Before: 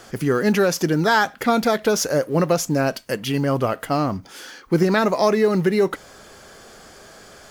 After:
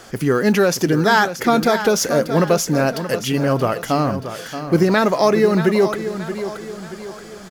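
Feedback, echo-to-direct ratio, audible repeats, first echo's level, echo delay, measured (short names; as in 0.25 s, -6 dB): 46%, -9.5 dB, 4, -10.5 dB, 0.628 s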